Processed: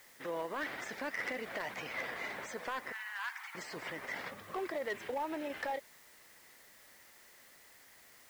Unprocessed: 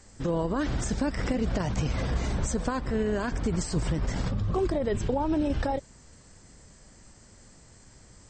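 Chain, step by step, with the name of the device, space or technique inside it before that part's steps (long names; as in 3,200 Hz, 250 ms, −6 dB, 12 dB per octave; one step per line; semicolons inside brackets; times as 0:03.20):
drive-through speaker (band-pass filter 530–3,900 Hz; parametric band 2,000 Hz +11 dB 0.55 octaves; hard clipping −25.5 dBFS, distortion −17 dB; white noise bed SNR 20 dB)
0:02.92–0:03.55: Butterworth high-pass 820 Hz 72 dB per octave
level −5.5 dB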